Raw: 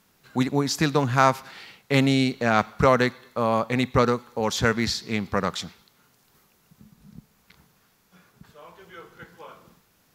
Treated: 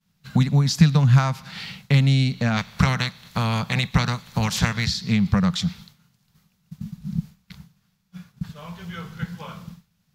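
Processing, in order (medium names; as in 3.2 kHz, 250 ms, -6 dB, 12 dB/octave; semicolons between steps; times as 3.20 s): 2.56–4.86 s: spectral peaks clipped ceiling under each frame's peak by 18 dB; peaking EQ 4 kHz +6.5 dB 1.7 oct; expander -49 dBFS; compression 3:1, threshold -30 dBFS, peak gain reduction 14.5 dB; resonant low shelf 240 Hz +10.5 dB, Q 3; trim +5 dB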